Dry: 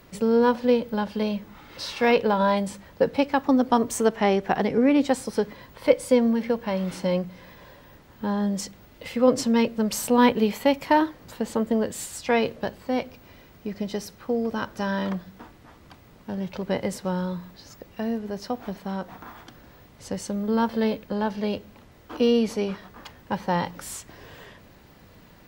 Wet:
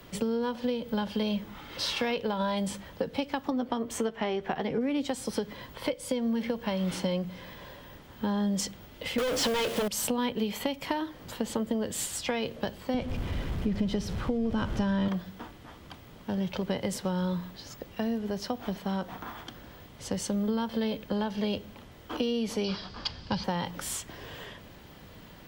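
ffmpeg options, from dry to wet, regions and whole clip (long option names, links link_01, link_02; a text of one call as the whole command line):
ffmpeg -i in.wav -filter_complex "[0:a]asettb=1/sr,asplit=3[link_01][link_02][link_03];[link_01]atrim=end=3.504[link_04];[link_02]atrim=start=3.5:end=4.81,asetpts=PTS-STARTPTS,afade=type=in:duration=0.004:curve=qsin,afade=type=out:start_time=1.306:duration=0.004:curve=qsin,bass=frequency=250:gain=-3,treble=frequency=4000:gain=-9,asplit=2[link_05][link_06];[link_06]adelay=13,volume=-9.5dB[link_07];[link_05][link_07]amix=inputs=2:normalize=0,atrim=end_sample=57771[link_08];[link_03]atrim=start=4.806[link_09];[link_04][link_08]acrossfade=duration=0.004:curve1=hsin:curve2=qsin[link_10];[link_10][link_09]acrossfade=duration=0.004:curve1=qsin:curve2=hsin,asettb=1/sr,asplit=3[link_11][link_12][link_13];[link_11]atrim=end=9.184[link_14];[link_12]atrim=start=9.18:end=9.88,asetpts=PTS-STARTPTS,afade=type=in:duration=0.004:curve=qsin,afade=type=out:start_time=0.696:duration=0.004:curve=qsin,equalizer=frequency=230:width=6.9:gain=-14,asplit=2[link_15][link_16];[link_16]highpass=frequency=720:poles=1,volume=33dB,asoftclip=type=tanh:threshold=-7dB[link_17];[link_15][link_17]amix=inputs=2:normalize=0,lowpass=frequency=2200:poles=1,volume=-6dB,acrusher=bits=6:dc=4:mix=0:aa=0.000001[link_18];[link_13]atrim=start=9.876[link_19];[link_14][link_18]acrossfade=duration=0.004:curve1=hsin:curve2=qsin[link_20];[link_20][link_19]acrossfade=duration=0.004:curve1=qsin:curve2=hsin,asettb=1/sr,asplit=3[link_21][link_22][link_23];[link_21]atrim=end=12.944[link_24];[link_22]atrim=start=12.94:end=15.08,asetpts=PTS-STARTPTS,afade=type=in:duration=0.004:curve=qsin,afade=type=out:start_time=2.136:duration=0.004:curve=qsin,aeval=exprs='val(0)+0.5*0.0133*sgn(val(0))':channel_layout=same,aemphasis=mode=reproduction:type=bsi[link_25];[link_23]atrim=start=15.076[link_26];[link_24][link_25]acrossfade=duration=0.004:curve1=hsin:curve2=qsin[link_27];[link_27][link_26]acrossfade=duration=0.004:curve1=qsin:curve2=hsin,asettb=1/sr,asplit=3[link_28][link_29][link_30];[link_28]atrim=end=22.644[link_31];[link_29]atrim=start=22.64:end=23.44,asetpts=PTS-STARTPTS,afade=type=in:duration=0.004:curve=qsin,afade=type=out:start_time=0.796:duration=0.004:curve=qsin,lowpass=frequency=4800:width_type=q:width=8.4,bandreject=frequency=1900:width=9.7,asubboost=boost=7:cutoff=210[link_32];[link_30]atrim=start=23.436[link_33];[link_31][link_32]acrossfade=duration=0.004:curve1=hsin:curve2=qsin[link_34];[link_34][link_33]acrossfade=duration=0.004:curve1=qsin:curve2=hsin,acompressor=threshold=-24dB:ratio=6,equalizer=frequency=3200:width_type=o:width=0.26:gain=6.5,acrossover=split=190|3000[link_35][link_36][link_37];[link_36]acompressor=threshold=-33dB:ratio=2[link_38];[link_35][link_38][link_37]amix=inputs=3:normalize=0,volume=1.5dB" out.wav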